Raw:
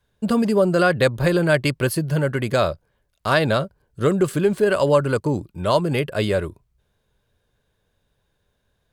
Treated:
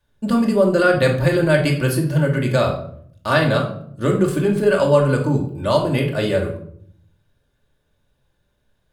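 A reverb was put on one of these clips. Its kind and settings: simulated room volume 890 m³, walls furnished, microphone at 2.5 m; trim -2 dB

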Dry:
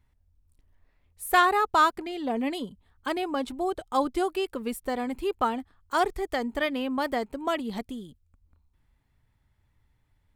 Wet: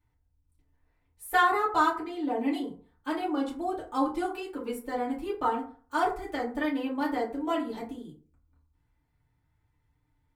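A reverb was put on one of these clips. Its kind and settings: FDN reverb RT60 0.43 s, low-frequency decay 0.95×, high-frequency decay 0.45×, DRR -7 dB; trim -11 dB

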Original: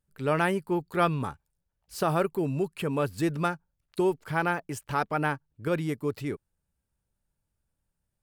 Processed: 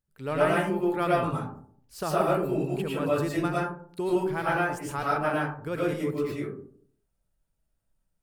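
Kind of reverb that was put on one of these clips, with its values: algorithmic reverb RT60 0.58 s, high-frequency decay 0.35×, pre-delay 70 ms, DRR -6 dB; trim -5.5 dB

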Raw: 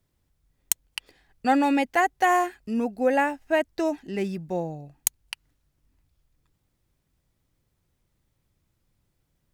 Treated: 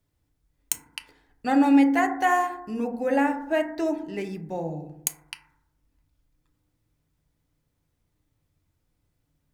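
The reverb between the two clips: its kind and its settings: FDN reverb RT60 0.79 s, low-frequency decay 1.4×, high-frequency decay 0.25×, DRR 4.5 dB; trim -3 dB

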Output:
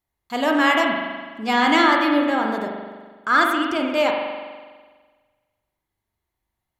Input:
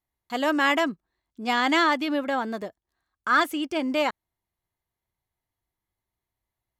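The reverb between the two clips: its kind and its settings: spring tank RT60 1.5 s, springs 41 ms, chirp 40 ms, DRR 1 dB; trim +2.5 dB

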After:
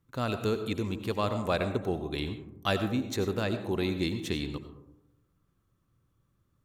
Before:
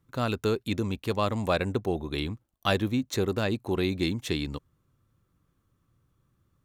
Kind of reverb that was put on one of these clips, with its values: algorithmic reverb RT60 0.9 s, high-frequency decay 0.3×, pre-delay 50 ms, DRR 8.5 dB; trim -3 dB

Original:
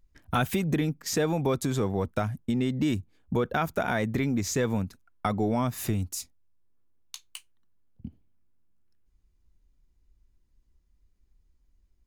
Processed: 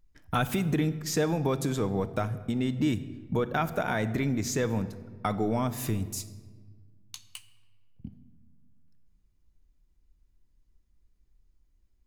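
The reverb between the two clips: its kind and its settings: simulated room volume 1400 m³, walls mixed, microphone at 0.48 m; trim -1.5 dB

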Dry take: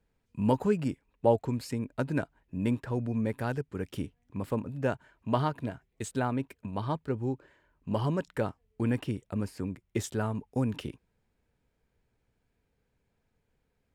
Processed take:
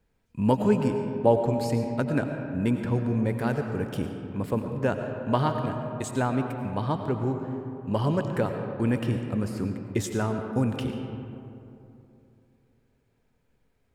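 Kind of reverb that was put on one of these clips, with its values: algorithmic reverb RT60 2.9 s, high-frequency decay 0.4×, pre-delay 60 ms, DRR 5 dB; trim +3.5 dB

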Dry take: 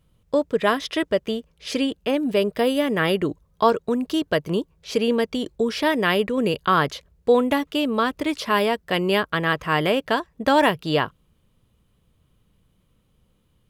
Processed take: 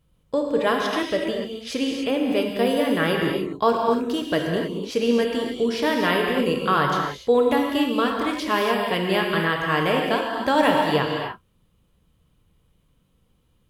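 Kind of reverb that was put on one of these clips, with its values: gated-style reverb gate 320 ms flat, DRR 0 dB; trim -3 dB

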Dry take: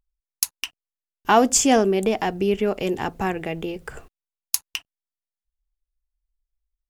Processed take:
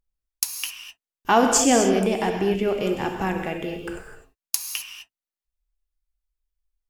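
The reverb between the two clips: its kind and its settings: gated-style reverb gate 280 ms flat, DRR 3 dB; trim -2 dB

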